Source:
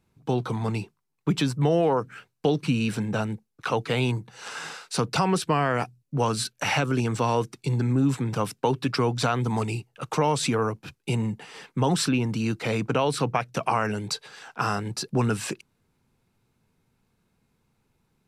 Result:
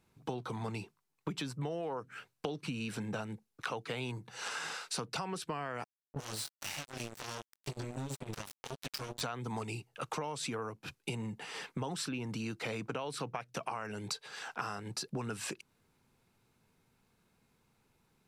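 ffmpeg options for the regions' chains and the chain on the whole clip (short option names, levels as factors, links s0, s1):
-filter_complex "[0:a]asettb=1/sr,asplit=3[s0][s1][s2];[s0]atrim=end=5.844[s3];[s1]atrim=start=5.84:end=9.21,asetpts=PTS-STARTPTS,afade=t=in:d=0.004:c=qsin,afade=t=out:st=3.366:d=0.004:c=qsin,acrossover=split=140|3000[s4][s5][s6];[s5]acompressor=threshold=0.01:ratio=3:attack=3.2:release=140:knee=2.83:detection=peak[s7];[s4][s7][s6]amix=inputs=3:normalize=0,flanger=delay=19:depth=3.9:speed=2,acrusher=bits=4:mix=0:aa=0.5[s8];[s2]atrim=start=9.206[s9];[s3][s8]acrossfade=d=0.004:c1=hsin:c2=qsin[s10];[s10][s9]acrossfade=d=0.004:c1=qsin:c2=hsin,lowshelf=f=300:g=-6,acompressor=threshold=0.0141:ratio=6,volume=1.12"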